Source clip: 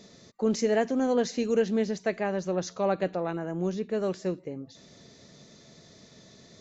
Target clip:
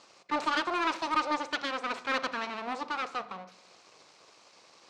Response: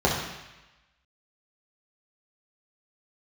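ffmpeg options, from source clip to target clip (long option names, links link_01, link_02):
-filter_complex "[0:a]aeval=exprs='abs(val(0))':channel_layout=same,highpass=190,equalizer=frequency=190:width_type=q:width=4:gain=-4,equalizer=frequency=860:width_type=q:width=4:gain=5,equalizer=frequency=1800:width_type=q:width=4:gain=5,equalizer=frequency=3000:width_type=q:width=4:gain=6,lowpass=frequency=4800:width=0.5412,lowpass=frequency=4800:width=1.3066,asplit=2[link_01][link_02];[1:a]atrim=start_sample=2205,adelay=52[link_03];[link_02][link_03]afir=irnorm=-1:irlink=0,volume=-30.5dB[link_04];[link_01][link_04]amix=inputs=2:normalize=0,asetrate=59535,aresample=44100,aeval=exprs='0.168*(cos(1*acos(clip(val(0)/0.168,-1,1)))-cos(1*PI/2))+0.00266*(cos(4*acos(clip(val(0)/0.168,-1,1)))-cos(4*PI/2))+0.00168*(cos(7*acos(clip(val(0)/0.168,-1,1)))-cos(7*PI/2))':channel_layout=same"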